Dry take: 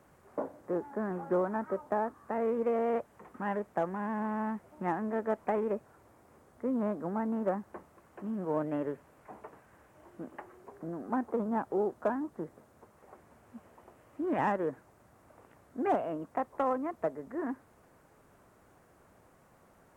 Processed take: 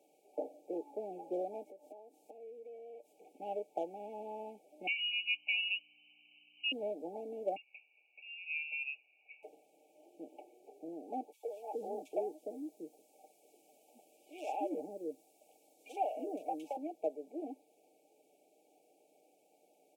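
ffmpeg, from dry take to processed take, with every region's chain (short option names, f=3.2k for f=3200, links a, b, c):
-filter_complex "[0:a]asettb=1/sr,asplit=3[a][b][c];[a]atrim=end=1.634[d];[b]atrim=start=1.63:end=3.13,asetpts=PTS-STARTPTS,afade=t=in:d=0.004:c=qsin,afade=t=out:st=1.496:d=0.004:c=qsin,bass=f=250:g=1,treble=f=4k:g=5,acompressor=threshold=-43dB:ratio=16:attack=3.2:release=140:knee=1:detection=peak[e];[c]atrim=start=3.126[f];[d][e]acrossfade=d=0.004:c1=hsin:c2=qsin[g];[g][f]acrossfade=d=0.004:c1=qsin:c2=hsin,asettb=1/sr,asplit=3[h][i][j];[h]atrim=end=4.874[k];[i]atrim=start=4.87:end=6.72,asetpts=PTS-STARTPTS,afade=t=in:d=0.004:c=qsin,afade=t=out:st=1.846:d=0.004:c=qsin,lowpass=f=2.6k:t=q:w=0.5098,lowpass=f=2.6k:t=q:w=0.6013,lowpass=f=2.6k:t=q:w=0.9,lowpass=f=2.6k:t=q:w=2.563,afreqshift=-3100,aeval=exprs='val(0)+0.000794*(sin(2*PI*60*n/s)+sin(2*PI*2*60*n/s)/2+sin(2*PI*3*60*n/s)/3+sin(2*PI*4*60*n/s)/4+sin(2*PI*5*60*n/s)/5)':c=same[l];[j]atrim=start=6.716[m];[k][l]acrossfade=d=0.004:c1=hsin:c2=qsin[n];[n][m]acrossfade=d=0.004:c1=qsin:c2=hsin,asettb=1/sr,asplit=3[o][p][q];[o]atrim=end=7.564[r];[p]atrim=start=7.56:end=9.43,asetpts=PTS-STARTPTS,afade=t=in:d=0.004:c=qsin,afade=t=out:st=1.866:d=0.004:c=qsin,highpass=f=560:p=1,lowpass=f=2.6k:t=q:w=0.5098,lowpass=f=2.6k:t=q:w=0.6013,lowpass=f=2.6k:t=q:w=0.9,lowpass=f=2.6k:t=q:w=2.563,afreqshift=-3000[s];[q]atrim=start=9.426[t];[r][s]acrossfade=d=0.004:c1=hsin:c2=qsin[u];[u][t]acrossfade=d=0.004:c1=qsin:c2=hsin,asettb=1/sr,asplit=3[v][w][x];[v]atrim=end=11.324[y];[w]atrim=start=11.32:end=16.77,asetpts=PTS-STARTPTS,afade=t=in:d=0.004:c=qsin,afade=t=out:st=5.446:d=0.004:c=qsin,highshelf=f=2.7k:g=8,acrossover=split=470|2400[z][aa][ab];[aa]adelay=110[ac];[z]adelay=410[ad];[ad][ac][ab]amix=inputs=3:normalize=0,atrim=end_sample=240345[ae];[x]atrim=start=16.766[af];[y][ae]acrossfade=d=0.004:c1=hsin:c2=qsin[ag];[ag][af]acrossfade=d=0.004:c1=qsin:c2=hsin,afftfilt=real='re*(1-between(b*sr/4096,870,2200))':imag='im*(1-between(b*sr/4096,870,2200))':win_size=4096:overlap=0.75,highpass=f=310:w=0.5412,highpass=f=310:w=1.3066,aecho=1:1:6.6:0.46,volume=-4.5dB"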